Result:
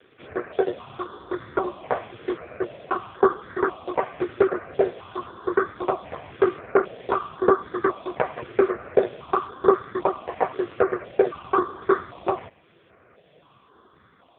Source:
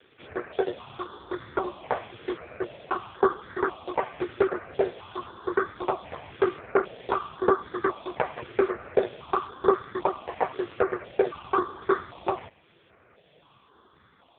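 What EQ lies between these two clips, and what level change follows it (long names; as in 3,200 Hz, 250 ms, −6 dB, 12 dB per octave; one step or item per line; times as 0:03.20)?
low-shelf EQ 61 Hz −7.5 dB
high-shelf EQ 3,000 Hz −10 dB
notch filter 870 Hz, Q 12
+4.5 dB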